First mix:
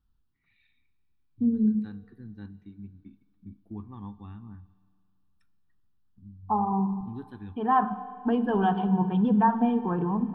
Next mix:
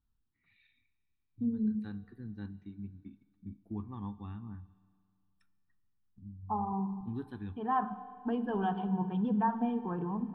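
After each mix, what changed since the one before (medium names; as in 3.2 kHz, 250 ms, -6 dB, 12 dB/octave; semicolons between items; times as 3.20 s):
second voice -8.0 dB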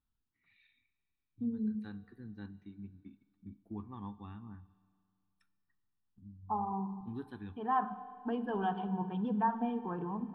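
master: add bass shelf 220 Hz -7 dB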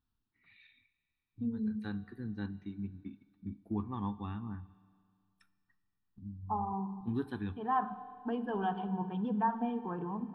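first voice +7.5 dB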